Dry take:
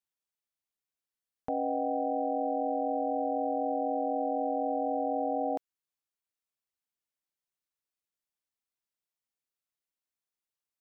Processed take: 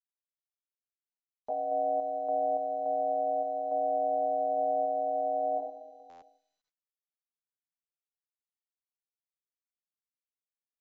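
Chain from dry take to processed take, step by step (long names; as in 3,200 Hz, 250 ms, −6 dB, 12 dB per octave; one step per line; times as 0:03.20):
adaptive Wiener filter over 9 samples
high-pass filter 320 Hz 24 dB per octave
coupled-rooms reverb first 0.37 s, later 1.6 s, from −16 dB, DRR −6 dB
downward compressor 12 to 1, threshold −26 dBFS, peak gain reduction 6.5 dB
low-pass with resonance 690 Hz, resonance Q 3.4
sample-and-hold tremolo
noise gate with hold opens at −44 dBFS
single-tap delay 188 ms −21.5 dB
buffer that repeats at 0:06.09, samples 512, times 10
level −8 dB
MP2 128 kbit/s 16,000 Hz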